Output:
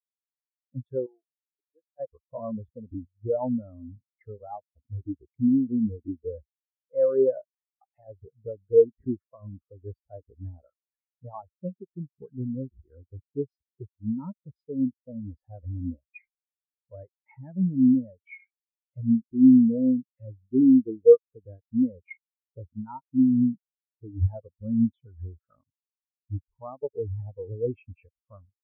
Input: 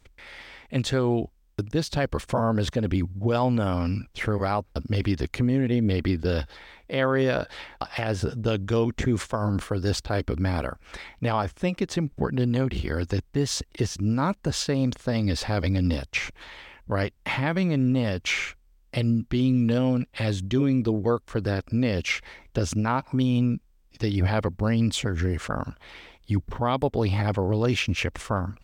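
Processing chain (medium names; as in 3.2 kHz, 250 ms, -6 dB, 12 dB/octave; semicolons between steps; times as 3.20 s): 1.06–2.00 s: high-pass 980 Hz 6 dB/octave; overdrive pedal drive 7 dB, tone 1.8 kHz, clips at -12.5 dBFS; spectral contrast expander 4:1; trim +9 dB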